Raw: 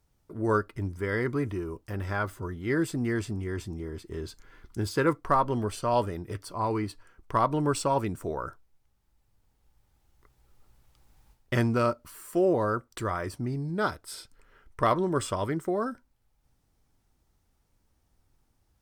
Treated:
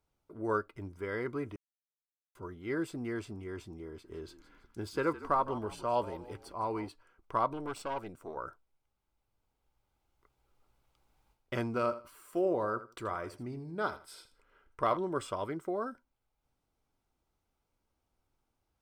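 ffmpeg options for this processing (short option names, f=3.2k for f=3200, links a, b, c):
-filter_complex "[0:a]asettb=1/sr,asplit=3[a][b][c];[a]atrim=end=3.884[d];[b]atrim=start=3.88:end=6.89,asetpts=PTS-STARTPTS,afade=t=in:d=0.004:c=qsin,afade=t=out:st=3.006:d=0.004:c=qsin,asplit=5[e][f][g][h][i];[f]adelay=161,afreqshift=-55,volume=-15dB[j];[g]adelay=322,afreqshift=-110,volume=-22.5dB[k];[h]adelay=483,afreqshift=-165,volume=-30.1dB[l];[i]adelay=644,afreqshift=-220,volume=-37.6dB[m];[e][j][k][l][m]amix=inputs=5:normalize=0,atrim=end_sample=132741[n];[c]atrim=start=6.886[o];[d][n]acrossfade=d=0.004:c1=hsin:c2=qsin[p];[p][o]acrossfade=d=0.004:c1=qsin:c2=hsin,asettb=1/sr,asplit=3[q][r][s];[q]atrim=end=7.534[t];[r]atrim=start=7.53:end=8.36,asetpts=PTS-STARTPTS,afade=t=in:d=0.004:c=qsin,afade=t=out:st=0.826:d=0.004:c=qsin,aeval=exprs='(tanh(17.8*val(0)+0.75)-tanh(0.75))/17.8':c=same[u];[s]atrim=start=8.356[v];[t][u]acrossfade=d=0.004:c1=hsin:c2=qsin[w];[w][v]acrossfade=d=0.004:c1=qsin:c2=hsin,asettb=1/sr,asplit=3[x][y][z];[x]atrim=end=11.664[aa];[y]atrim=start=11.66:end=14.97,asetpts=PTS-STARTPTS,afade=t=in:d=0.004:c=qsin,afade=t=out:st=3.306:d=0.004:c=qsin,aecho=1:1:81|162:0.188|0.0414,atrim=end_sample=145971[ab];[z]atrim=start=14.966[ac];[aa][ab]acrossfade=d=0.004:c1=hsin:c2=qsin[ad];[ad][ac]acrossfade=d=0.004:c1=qsin:c2=hsin,asplit=3[ae][af][ag];[ae]atrim=end=1.56,asetpts=PTS-STARTPTS,afade=t=out:st=1.556:d=0.004:c=hsin[ah];[af]atrim=start=1.56:end=2.35,asetpts=PTS-STARTPTS,volume=0[ai];[ag]atrim=start=2.35,asetpts=PTS-STARTPTS,afade=t=in:d=0.004:c=hsin[aj];[ah][ai][aj]concat=n=3:v=0:a=1,bass=f=250:g=-8,treble=f=4k:g=-7,bandreject=f=1.8k:w=6.8,volume=-5dB"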